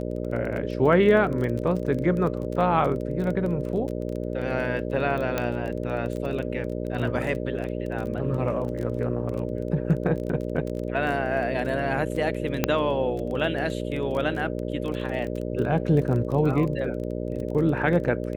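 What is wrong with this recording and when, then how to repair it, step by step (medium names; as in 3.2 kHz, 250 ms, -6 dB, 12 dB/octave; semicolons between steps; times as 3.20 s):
buzz 60 Hz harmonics 10 -30 dBFS
crackle 21 per s -30 dBFS
5.38 s: pop -11 dBFS
12.64 s: pop -6 dBFS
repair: de-click; de-hum 60 Hz, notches 10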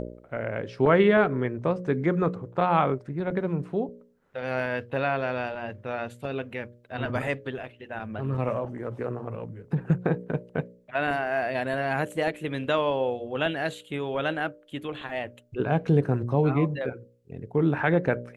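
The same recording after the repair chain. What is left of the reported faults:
nothing left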